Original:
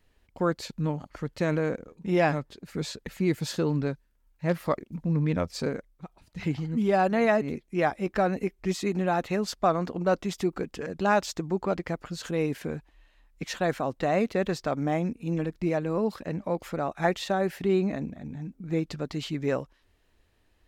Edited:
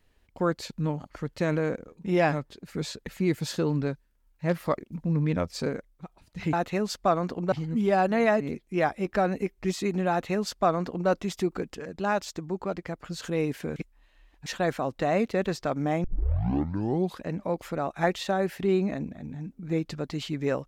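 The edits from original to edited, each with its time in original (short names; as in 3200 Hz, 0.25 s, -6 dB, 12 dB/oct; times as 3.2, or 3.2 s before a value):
9.11–10.1 copy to 6.53
10.76–12.05 gain -3.5 dB
12.77–13.47 reverse
15.05 tape start 1.18 s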